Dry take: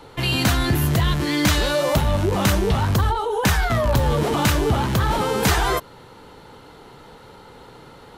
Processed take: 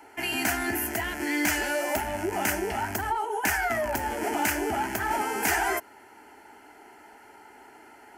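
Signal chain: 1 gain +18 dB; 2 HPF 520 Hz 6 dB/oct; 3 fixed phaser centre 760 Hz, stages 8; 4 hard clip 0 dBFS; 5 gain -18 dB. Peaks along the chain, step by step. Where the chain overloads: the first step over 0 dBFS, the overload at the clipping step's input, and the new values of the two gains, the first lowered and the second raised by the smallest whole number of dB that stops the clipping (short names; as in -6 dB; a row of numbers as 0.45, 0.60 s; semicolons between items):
+9.0, +9.0, +8.5, 0.0, -18.0 dBFS; step 1, 8.5 dB; step 1 +9 dB, step 5 -9 dB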